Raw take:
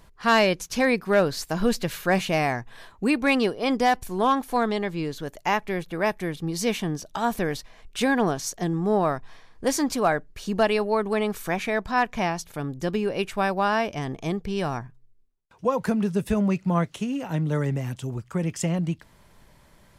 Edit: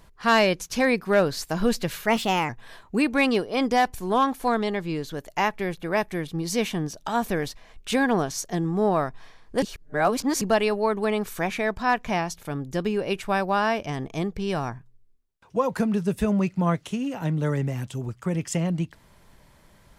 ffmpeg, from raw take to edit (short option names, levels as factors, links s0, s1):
-filter_complex "[0:a]asplit=5[s0][s1][s2][s3][s4];[s0]atrim=end=2.064[s5];[s1]atrim=start=2.06:end=2.58,asetpts=PTS-STARTPTS,asetrate=52920,aresample=44100[s6];[s2]atrim=start=2.576:end=9.712[s7];[s3]atrim=start=9.708:end=10.502,asetpts=PTS-STARTPTS,areverse[s8];[s4]atrim=start=10.498[s9];[s5][s6]acrossfade=d=0.004:c1=hsin:c2=hsin[s10];[s10][s7]acrossfade=d=0.004:c1=hsin:c2=hsin[s11];[s11][s8]acrossfade=d=0.004:c1=hsin:c2=hsin[s12];[s12][s9]acrossfade=d=0.004:c1=hsin:c2=hsin"